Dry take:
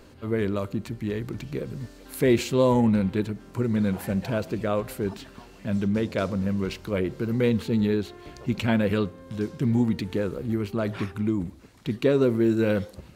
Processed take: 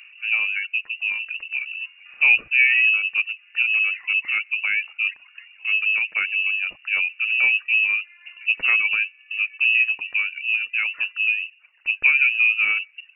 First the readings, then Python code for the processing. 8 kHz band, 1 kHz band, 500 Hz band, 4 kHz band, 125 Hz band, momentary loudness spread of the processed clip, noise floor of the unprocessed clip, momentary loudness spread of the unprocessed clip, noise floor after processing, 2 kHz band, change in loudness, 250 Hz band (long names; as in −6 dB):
below −35 dB, −6.5 dB, below −25 dB, +10.5 dB, below −35 dB, 11 LU, −49 dBFS, 12 LU, −54 dBFS, +21.0 dB, +6.5 dB, below −35 dB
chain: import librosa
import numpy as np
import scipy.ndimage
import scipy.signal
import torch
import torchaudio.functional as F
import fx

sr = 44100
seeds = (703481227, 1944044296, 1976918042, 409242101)

y = fx.wiener(x, sr, points=15)
y = fx.freq_invert(y, sr, carrier_hz=2800)
y = fx.tilt_shelf(y, sr, db=-8.5, hz=1300.0)
y = fx.dereverb_blind(y, sr, rt60_s=0.79)